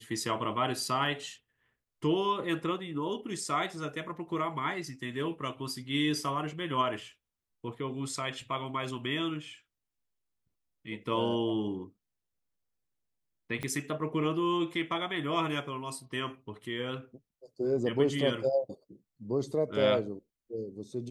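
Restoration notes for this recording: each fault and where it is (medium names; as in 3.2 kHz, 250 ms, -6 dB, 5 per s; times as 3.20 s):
13.63 s: pop -21 dBFS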